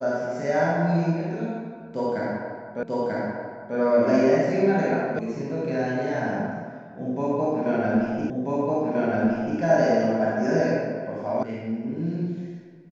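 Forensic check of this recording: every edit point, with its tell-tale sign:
2.83 s: repeat of the last 0.94 s
5.19 s: sound stops dead
8.30 s: repeat of the last 1.29 s
11.43 s: sound stops dead

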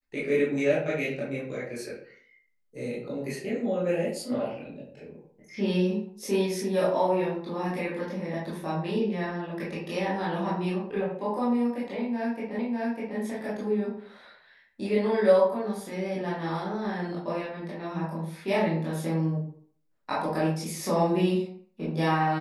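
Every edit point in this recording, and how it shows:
12.59 s: repeat of the last 0.6 s

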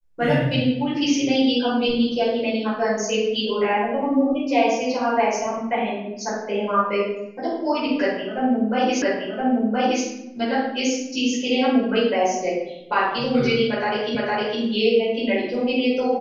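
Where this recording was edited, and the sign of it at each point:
9.02 s: repeat of the last 1.02 s
14.15 s: repeat of the last 0.46 s

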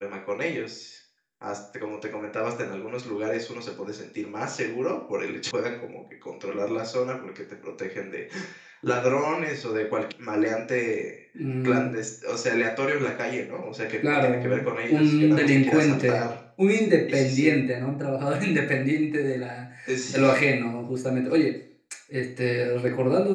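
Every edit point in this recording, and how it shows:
5.51 s: sound stops dead
10.12 s: sound stops dead

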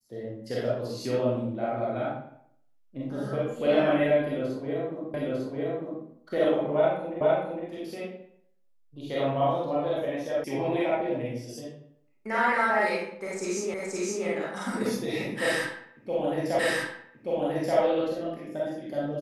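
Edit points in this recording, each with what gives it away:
5.14 s: repeat of the last 0.9 s
7.21 s: repeat of the last 0.46 s
10.44 s: sound stops dead
13.74 s: repeat of the last 0.52 s
16.59 s: repeat of the last 1.18 s

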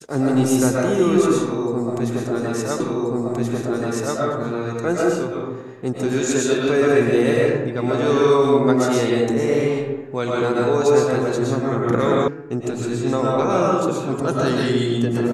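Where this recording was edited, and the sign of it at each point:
2.80 s: repeat of the last 1.38 s
12.28 s: sound stops dead

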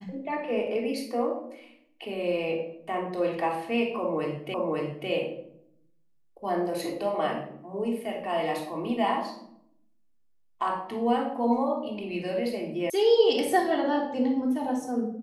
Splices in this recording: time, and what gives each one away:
4.54 s: repeat of the last 0.55 s
12.90 s: sound stops dead

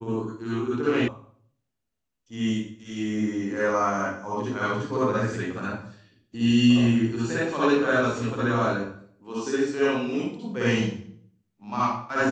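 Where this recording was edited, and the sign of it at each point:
1.08 s: sound stops dead

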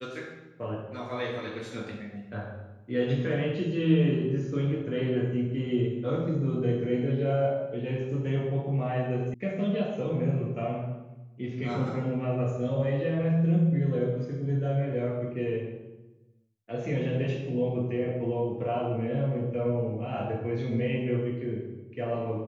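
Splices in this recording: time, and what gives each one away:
9.34 s: sound stops dead

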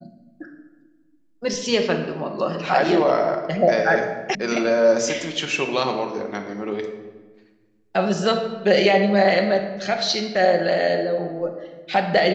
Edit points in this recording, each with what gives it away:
4.35 s: sound stops dead

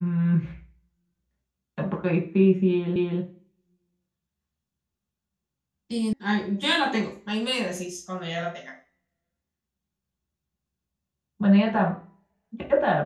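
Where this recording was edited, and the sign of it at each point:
2.96 s: repeat of the last 0.25 s
6.13 s: sound stops dead

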